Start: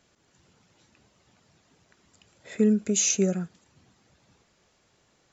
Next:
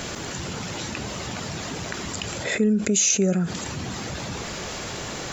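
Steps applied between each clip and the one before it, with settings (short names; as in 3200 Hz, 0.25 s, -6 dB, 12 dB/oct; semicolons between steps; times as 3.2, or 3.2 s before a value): fast leveller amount 70%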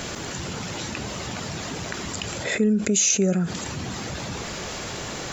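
nothing audible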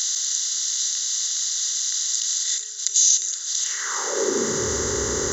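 per-bin compression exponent 0.4; high-pass sweep 3800 Hz -> 65 Hz, 3.58–4.77; fixed phaser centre 670 Hz, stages 6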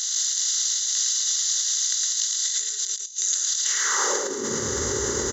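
negative-ratio compressor -26 dBFS, ratio -0.5; on a send: echo 0.111 s -4 dB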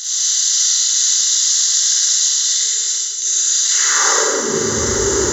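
Schroeder reverb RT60 1.4 s, DRR -8.5 dB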